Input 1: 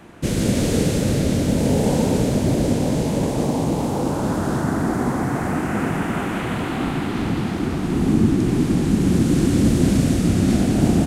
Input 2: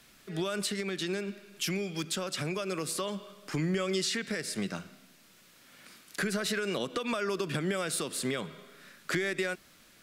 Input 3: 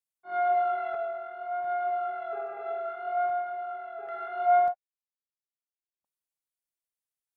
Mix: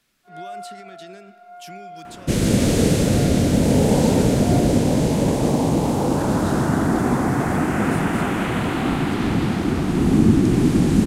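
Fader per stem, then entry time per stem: +2.0, −9.5, −9.5 decibels; 2.05, 0.00, 0.00 seconds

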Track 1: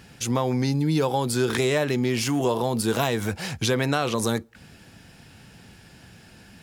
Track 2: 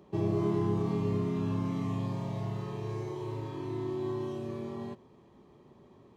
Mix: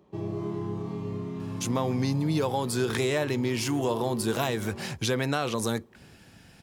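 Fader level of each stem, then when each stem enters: −4.0, −3.5 decibels; 1.40, 0.00 seconds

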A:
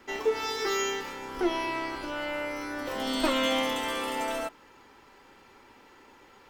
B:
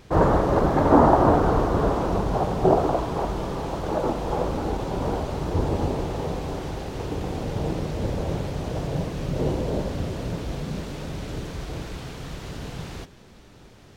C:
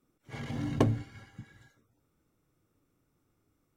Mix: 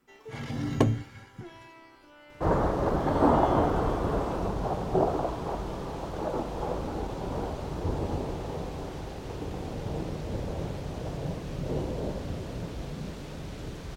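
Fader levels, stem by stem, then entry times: −19.5, −6.5, +2.5 decibels; 0.00, 2.30, 0.00 seconds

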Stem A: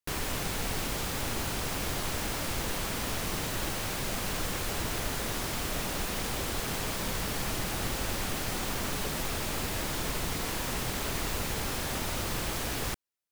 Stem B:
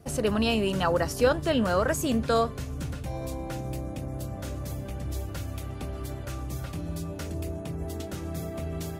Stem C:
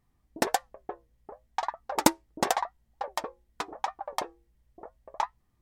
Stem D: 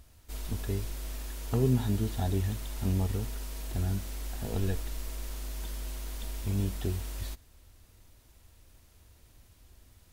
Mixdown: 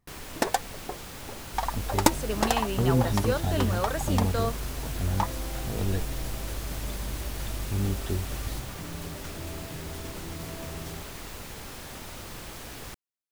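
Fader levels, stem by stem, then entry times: −8.0, −6.0, +0.5, +2.0 decibels; 0.00, 2.05, 0.00, 1.25 seconds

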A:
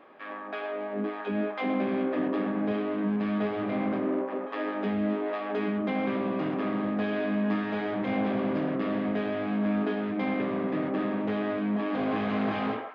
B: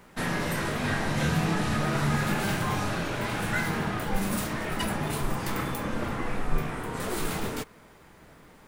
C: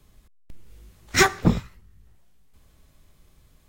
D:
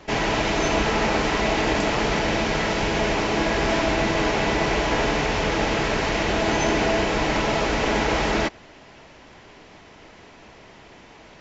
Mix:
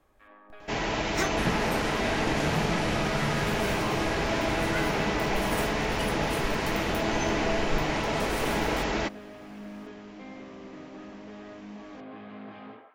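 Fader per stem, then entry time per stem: −15.0, −4.5, −13.5, −6.5 decibels; 0.00, 1.20, 0.00, 0.60 seconds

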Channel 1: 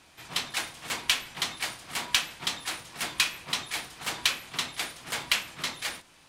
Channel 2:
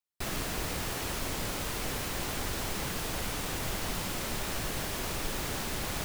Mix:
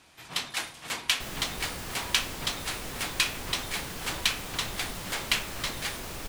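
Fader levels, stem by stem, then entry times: −1.0, −4.0 decibels; 0.00, 1.00 seconds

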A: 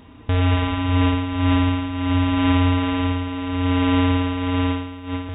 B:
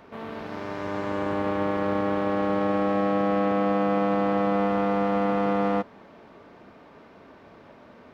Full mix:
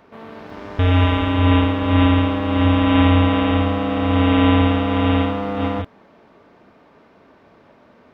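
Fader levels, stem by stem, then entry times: +3.0, −1.0 decibels; 0.50, 0.00 seconds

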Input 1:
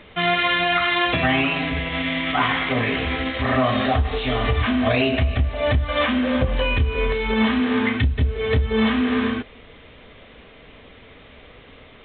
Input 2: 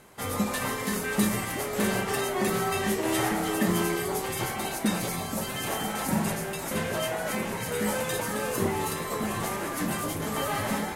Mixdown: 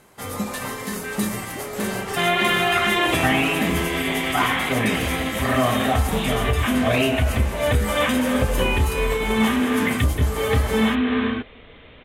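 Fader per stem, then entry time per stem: −0.5, +0.5 decibels; 2.00, 0.00 seconds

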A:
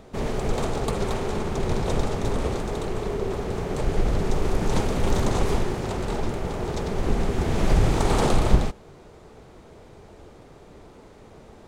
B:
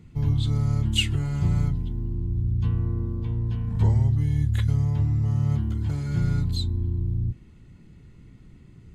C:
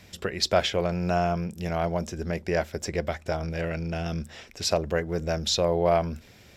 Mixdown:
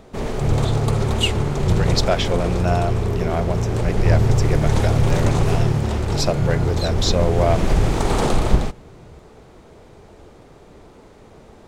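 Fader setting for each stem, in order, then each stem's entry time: +2.0, +2.5, +2.5 decibels; 0.00, 0.25, 1.55 seconds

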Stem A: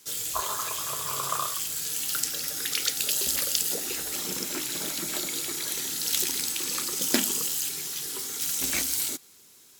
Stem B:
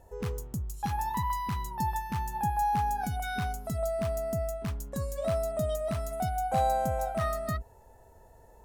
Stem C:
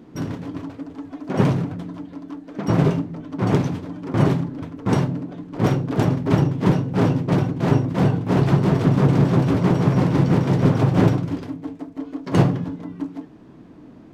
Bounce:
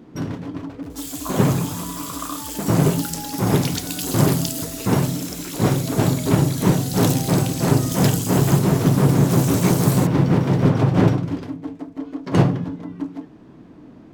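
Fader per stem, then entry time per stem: −2.0, −9.5, +0.5 decibels; 0.90, 0.60, 0.00 seconds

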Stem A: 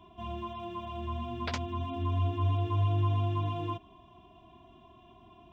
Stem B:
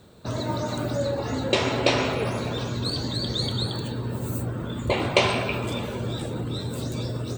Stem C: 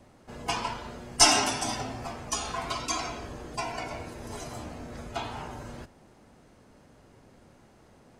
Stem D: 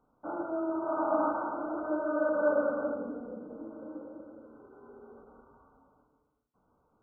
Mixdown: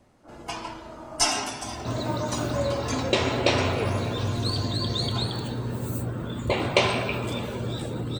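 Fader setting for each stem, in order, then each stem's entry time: −3.5, −1.0, −4.0, −12.5 decibels; 1.45, 1.60, 0.00, 0.00 seconds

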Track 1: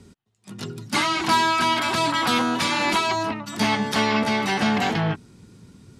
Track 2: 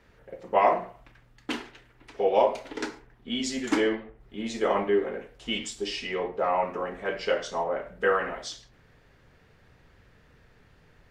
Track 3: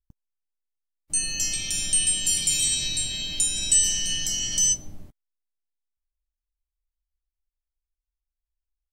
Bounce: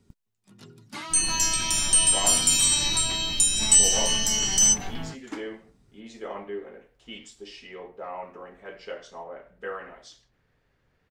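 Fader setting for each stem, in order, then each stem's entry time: −15.5, −11.0, +2.5 decibels; 0.00, 1.60, 0.00 seconds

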